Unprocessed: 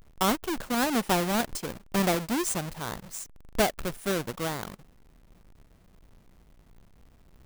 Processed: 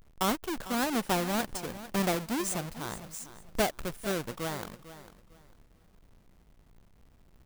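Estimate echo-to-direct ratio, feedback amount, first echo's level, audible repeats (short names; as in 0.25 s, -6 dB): -14.0 dB, 25%, -14.5 dB, 2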